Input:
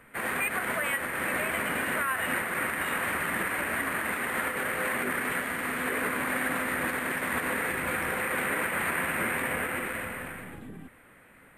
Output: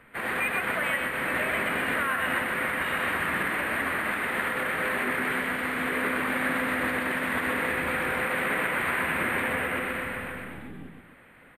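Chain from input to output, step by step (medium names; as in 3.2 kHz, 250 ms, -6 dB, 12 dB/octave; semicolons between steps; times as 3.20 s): resonant high shelf 4.9 kHz -6 dB, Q 1.5; loudspeakers at several distances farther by 43 m -4 dB, 93 m -12 dB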